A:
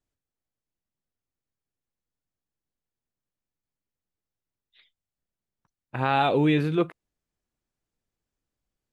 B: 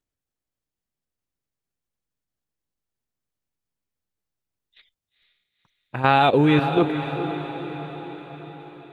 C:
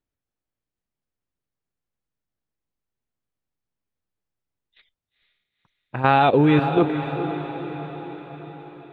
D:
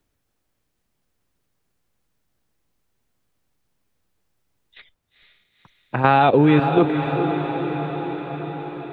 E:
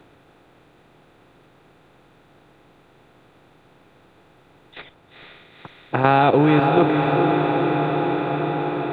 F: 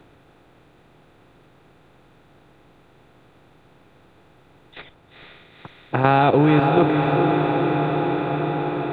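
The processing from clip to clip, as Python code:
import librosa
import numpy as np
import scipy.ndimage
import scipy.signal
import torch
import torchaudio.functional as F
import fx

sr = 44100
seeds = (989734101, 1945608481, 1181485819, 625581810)

y1 = fx.level_steps(x, sr, step_db=12)
y1 = fx.echo_diffused(y1, sr, ms=473, feedback_pct=58, wet_db=-9.0)
y1 = F.gain(torch.from_numpy(y1), 8.0).numpy()
y2 = fx.high_shelf(y1, sr, hz=4000.0, db=-11.0)
y2 = F.gain(torch.from_numpy(y2), 1.0).numpy()
y3 = fx.band_squash(y2, sr, depth_pct=40)
y3 = F.gain(torch.from_numpy(y3), 2.0).numpy()
y4 = fx.bin_compress(y3, sr, power=0.6)
y4 = F.gain(torch.from_numpy(y4), -2.5).numpy()
y5 = fx.low_shelf(y4, sr, hz=120.0, db=6.0)
y5 = F.gain(torch.from_numpy(y5), -1.0).numpy()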